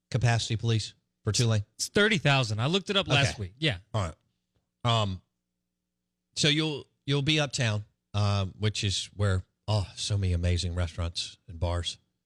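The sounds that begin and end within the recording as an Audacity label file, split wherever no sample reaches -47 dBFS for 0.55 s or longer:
4.850000	5.180000	sound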